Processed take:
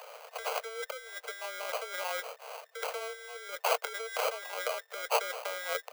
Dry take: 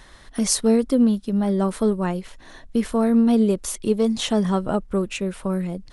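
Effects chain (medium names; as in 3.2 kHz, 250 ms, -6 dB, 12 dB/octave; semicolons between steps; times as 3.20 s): compressor with a negative ratio -29 dBFS, ratio -1; sample-rate reducer 1.8 kHz, jitter 0%; rippled Chebyshev high-pass 450 Hz, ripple 3 dB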